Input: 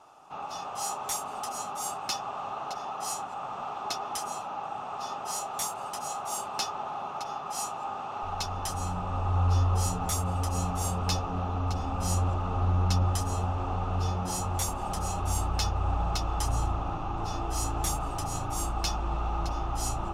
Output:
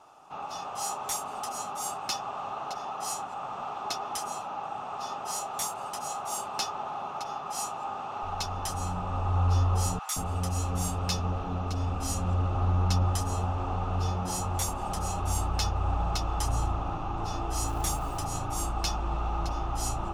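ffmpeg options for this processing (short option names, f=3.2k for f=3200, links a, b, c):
-filter_complex "[0:a]asettb=1/sr,asplit=3[a][b][c];[a]atrim=end=9.994[d];[b]atrim=start=9.99:end=12.55,asetpts=PTS-STARTPTS,afade=t=in:d=0.004:c=qsin,afade=t=out:st=2.556:d=0.004:c=qsin,acrossover=split=900[e][f];[e]adelay=170[g];[g][f]amix=inputs=2:normalize=0,atrim=end_sample=112896[h];[c]atrim=start=12.546[i];[d][h]acrossfade=d=0.004:c1=hsin:c2=qsin[j];[j][i]acrossfade=d=0.004:c1=qsin:c2=hsin,asettb=1/sr,asplit=3[k][l][m];[k]atrim=end=17.674[n];[l]atrim=start=17.67:end=18.25,asetpts=PTS-STARTPTS,afade=t=in:d=0.004:c=qsin,afade=t=out:st=0.576:d=0.004:c=qsin,acrusher=bits=6:mode=log:mix=0:aa=0.000001[o];[m]atrim=start=18.246[p];[n][o]acrossfade=d=0.004:c1=hsin:c2=qsin[q];[q][p]acrossfade=d=0.004:c1=qsin:c2=hsin"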